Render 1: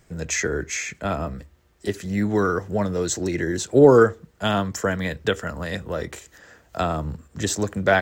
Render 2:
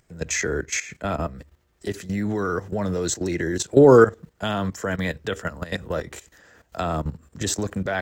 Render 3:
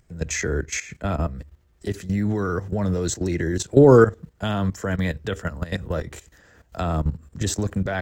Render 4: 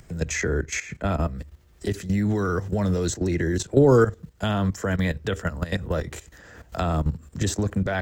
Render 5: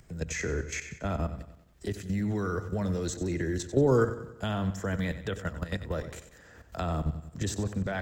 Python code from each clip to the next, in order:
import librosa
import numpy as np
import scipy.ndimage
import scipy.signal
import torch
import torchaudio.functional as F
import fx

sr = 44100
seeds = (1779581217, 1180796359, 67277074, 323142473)

y1 = fx.level_steps(x, sr, step_db=14)
y1 = F.gain(torch.from_numpy(y1), 3.5).numpy()
y2 = fx.low_shelf(y1, sr, hz=160.0, db=11.0)
y2 = F.gain(torch.from_numpy(y2), -2.0).numpy()
y3 = fx.band_squash(y2, sr, depth_pct=40)
y4 = fx.echo_feedback(y3, sr, ms=93, feedback_pct=50, wet_db=-12.5)
y4 = F.gain(torch.from_numpy(y4), -7.0).numpy()